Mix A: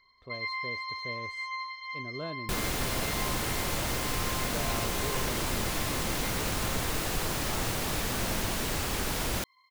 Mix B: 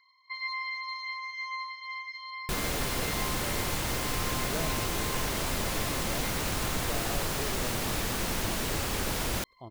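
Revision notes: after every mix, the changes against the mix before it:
speech: entry +2.35 s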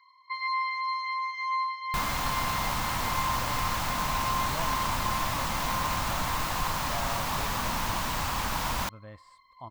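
second sound: entry -0.55 s; master: add fifteen-band graphic EQ 400 Hz -12 dB, 1 kHz +11 dB, 10 kHz -5 dB

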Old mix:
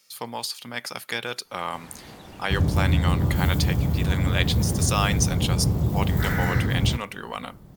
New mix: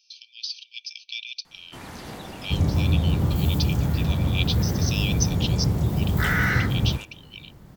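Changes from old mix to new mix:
speech: add brick-wall FIR band-pass 2.3–6.3 kHz; first sound +6.5 dB

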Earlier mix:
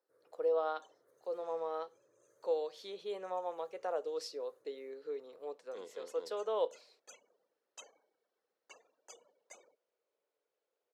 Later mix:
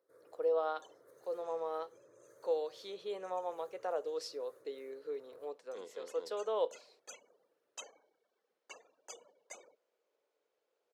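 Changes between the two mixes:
first sound +9.0 dB; second sound +5.0 dB

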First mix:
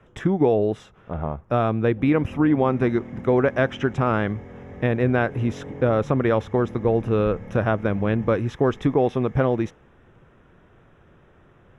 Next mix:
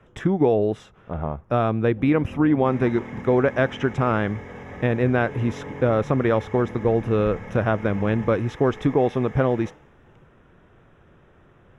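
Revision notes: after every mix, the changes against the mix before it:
second sound +9.5 dB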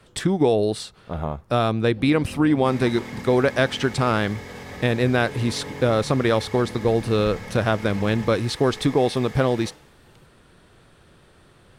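master: remove boxcar filter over 10 samples

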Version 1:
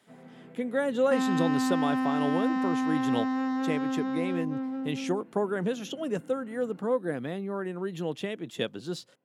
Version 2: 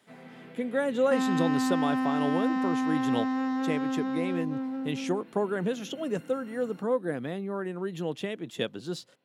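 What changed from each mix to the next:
first sound: remove tape spacing loss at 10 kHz 43 dB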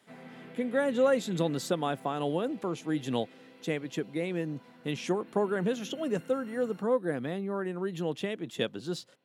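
second sound: muted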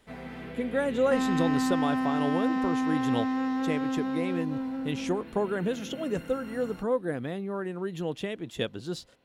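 first sound +7.0 dB; second sound: unmuted; master: remove high-pass 130 Hz 24 dB/octave

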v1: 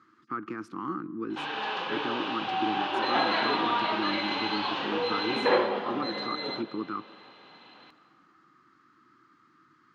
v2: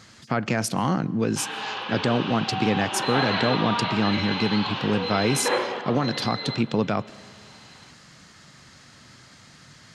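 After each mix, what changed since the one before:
speech: remove two resonant band-passes 630 Hz, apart 1.9 oct; background: add tilt EQ +1.5 dB/octave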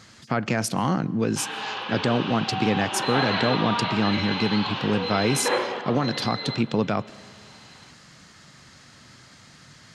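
no change

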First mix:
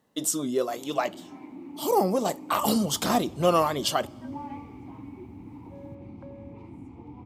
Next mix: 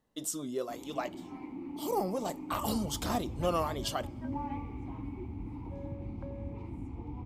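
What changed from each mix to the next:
speech -9.0 dB; master: remove high-pass 120 Hz 12 dB/octave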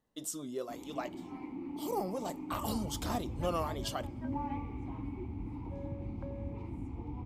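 speech -3.5 dB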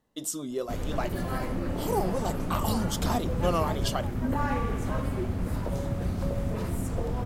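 speech +6.5 dB; first sound: remove vowel filter u; second sound +8.5 dB

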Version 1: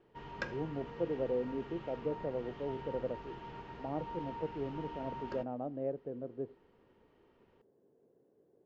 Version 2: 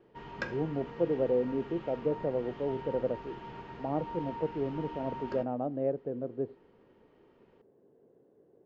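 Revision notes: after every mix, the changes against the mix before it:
speech +6.0 dB; background: send +7.0 dB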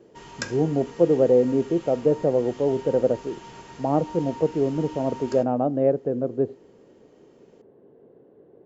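speech +10.5 dB; background: remove distance through air 360 m

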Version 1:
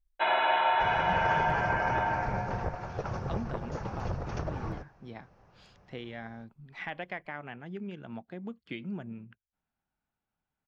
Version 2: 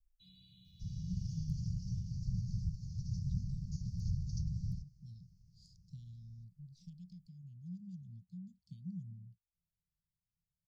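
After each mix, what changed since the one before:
master: add Chebyshev band-stop 180–4600 Hz, order 5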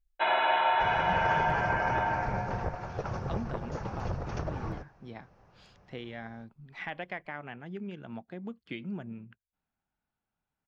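master: remove Chebyshev band-stop 180–4600 Hz, order 5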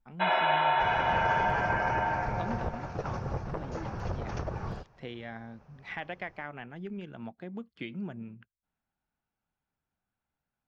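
speech: entry -0.90 s

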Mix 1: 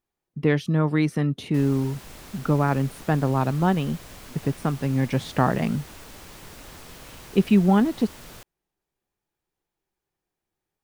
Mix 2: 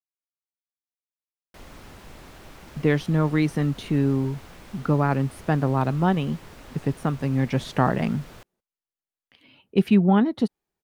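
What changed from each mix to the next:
speech: entry +2.40 s; background: add treble shelf 4.3 kHz -10.5 dB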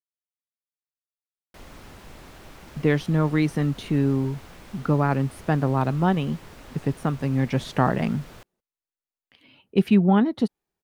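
no change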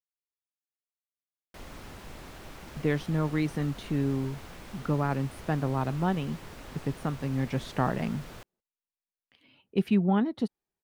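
speech -6.5 dB

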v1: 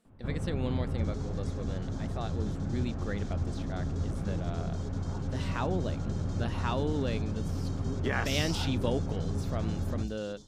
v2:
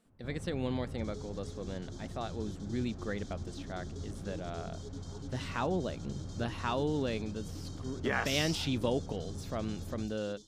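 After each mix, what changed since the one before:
first sound -10.0 dB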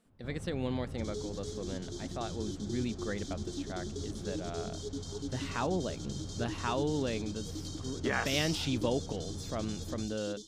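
first sound: remove low-pass 2.5 kHz; second sound +8.5 dB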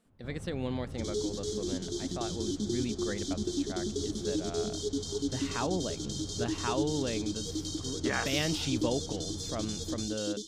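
second sound +7.5 dB

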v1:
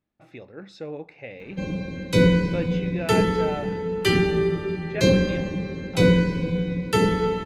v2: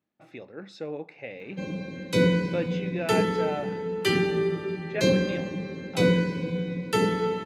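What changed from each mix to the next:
background -3.0 dB; master: add high-pass 150 Hz 12 dB/octave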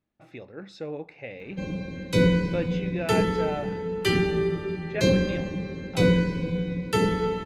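master: remove high-pass 150 Hz 12 dB/octave

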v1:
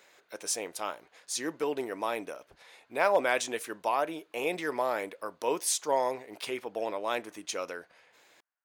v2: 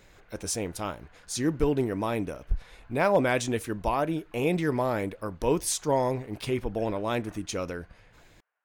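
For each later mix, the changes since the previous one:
background +11.0 dB; master: remove high-pass 520 Hz 12 dB/octave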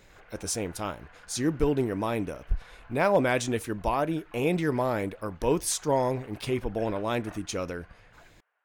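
background +6.5 dB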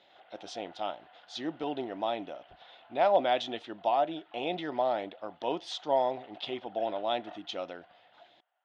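master: add cabinet simulation 450–3800 Hz, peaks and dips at 450 Hz -10 dB, 720 Hz +8 dB, 1.1 kHz -9 dB, 1.6 kHz -9 dB, 2.3 kHz -9 dB, 3.4 kHz +8 dB

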